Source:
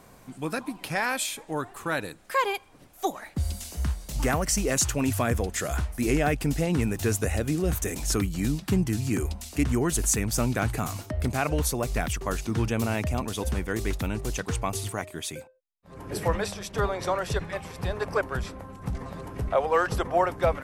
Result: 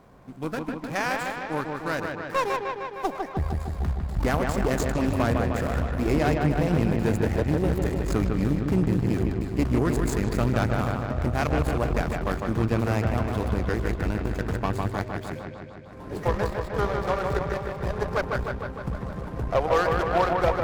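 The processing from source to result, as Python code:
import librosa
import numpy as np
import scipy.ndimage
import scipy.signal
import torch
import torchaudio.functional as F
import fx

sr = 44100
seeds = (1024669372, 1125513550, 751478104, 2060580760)

y = scipy.ndimage.median_filter(x, 15, mode='constant')
y = fx.echo_wet_lowpass(y, sr, ms=153, feedback_pct=70, hz=3500.0, wet_db=-4)
y = fx.cheby_harmonics(y, sr, harmonics=(6,), levels_db=(-19,), full_scale_db=-10.0)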